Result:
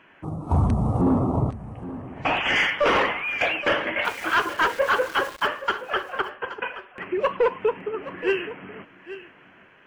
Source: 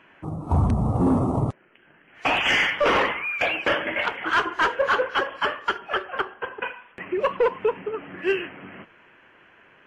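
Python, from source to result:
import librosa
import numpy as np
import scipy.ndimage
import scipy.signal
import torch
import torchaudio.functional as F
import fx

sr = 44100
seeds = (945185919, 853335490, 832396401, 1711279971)

y = fx.lowpass(x, sr, hz=2600.0, slope=6, at=(1.01, 2.56))
y = fx.sample_gate(y, sr, floor_db=-35.0, at=(4.04, 5.46), fade=0.02)
y = y + 10.0 ** (-14.5 / 20.0) * np.pad(y, (int(824 * sr / 1000.0), 0))[:len(y)]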